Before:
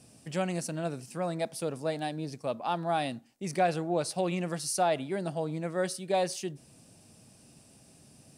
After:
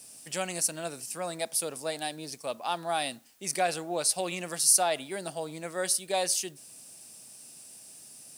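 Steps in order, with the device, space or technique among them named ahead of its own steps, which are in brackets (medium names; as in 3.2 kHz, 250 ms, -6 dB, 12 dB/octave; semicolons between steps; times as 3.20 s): turntable without a phono preamp (RIAA curve recording; white noise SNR 34 dB)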